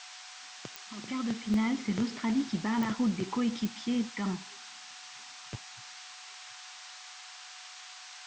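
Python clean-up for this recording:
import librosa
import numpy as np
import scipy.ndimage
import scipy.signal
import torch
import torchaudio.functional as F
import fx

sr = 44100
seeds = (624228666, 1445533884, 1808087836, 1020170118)

y = fx.fix_declick_ar(x, sr, threshold=10.0)
y = fx.notch(y, sr, hz=740.0, q=30.0)
y = fx.fix_interpolate(y, sr, at_s=(1.54,), length_ms=1.5)
y = fx.noise_reduce(y, sr, print_start_s=6.98, print_end_s=7.48, reduce_db=29.0)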